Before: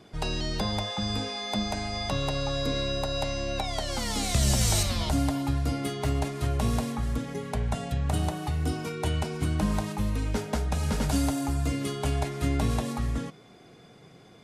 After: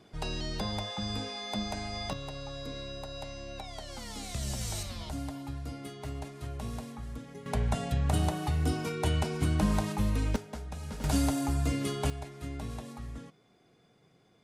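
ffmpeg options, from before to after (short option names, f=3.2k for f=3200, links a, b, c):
-af "asetnsamples=n=441:p=0,asendcmd='2.13 volume volume -11.5dB;7.46 volume volume -0.5dB;10.36 volume volume -12dB;11.04 volume volume -1.5dB;12.1 volume volume -12.5dB',volume=-5dB"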